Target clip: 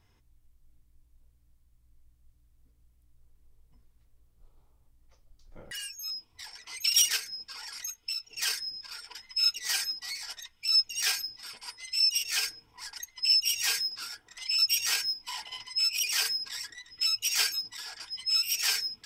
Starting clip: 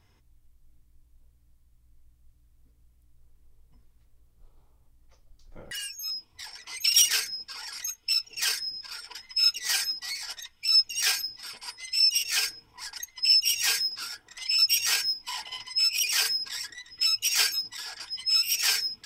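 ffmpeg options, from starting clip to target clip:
ffmpeg -i in.wav -filter_complex "[0:a]asplit=3[link_01][link_02][link_03];[link_01]afade=type=out:start_time=7.16:duration=0.02[link_04];[link_02]acompressor=threshold=-29dB:ratio=4,afade=type=in:start_time=7.16:duration=0.02,afade=type=out:start_time=8.3:duration=0.02[link_05];[link_03]afade=type=in:start_time=8.3:duration=0.02[link_06];[link_04][link_05][link_06]amix=inputs=3:normalize=0,volume=-3dB" out.wav

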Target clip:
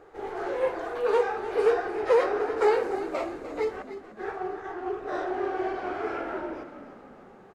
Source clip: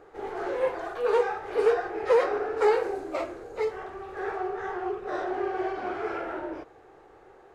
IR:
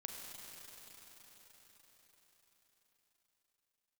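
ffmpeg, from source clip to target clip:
-filter_complex "[0:a]asettb=1/sr,asplit=3[link_01][link_02][link_03];[link_01]atrim=end=3.824[link_04];[link_02]atrim=start=3.82:end=4.9,asetpts=PTS-STARTPTS,afade=type=in:duration=0.004:curve=qsin,afade=type=out:start_time=1.076:duration=0.004:curve=qsin,agate=range=-33dB:threshold=-28dB:ratio=3:detection=peak[link_05];[link_03]atrim=start=4.896[link_06];[link_04][link_05]acrossfade=duration=0.004:curve1=hsin:curve2=qsin[link_07];[link_07][link_06]acrossfade=duration=0.004:curve1=qsin:curve2=hsin,asplit=7[link_08][link_09][link_10][link_11][link_12][link_13][link_14];[link_09]adelay=298,afreqshift=-41,volume=-12dB[link_15];[link_10]adelay=596,afreqshift=-82,volume=-17.2dB[link_16];[link_11]adelay=894,afreqshift=-123,volume=-22.4dB[link_17];[link_12]adelay=1192,afreqshift=-164,volume=-27.6dB[link_18];[link_13]adelay=1490,afreqshift=-205,volume=-32.8dB[link_19];[link_14]adelay=1788,afreqshift=-246,volume=-38dB[link_20];[link_08][link_15][link_16][link_17][link_18][link_19][link_20]amix=inputs=7:normalize=0"

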